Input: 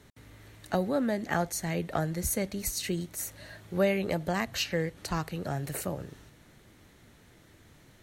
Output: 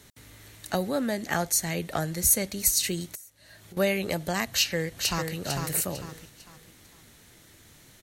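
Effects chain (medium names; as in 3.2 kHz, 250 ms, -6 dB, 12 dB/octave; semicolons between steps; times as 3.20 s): treble shelf 3.1 kHz +12 dB; 3.15–3.77 s: compression 12:1, threshold -45 dBFS, peak gain reduction 23.5 dB; 4.46–5.35 s: echo throw 450 ms, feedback 35%, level -5 dB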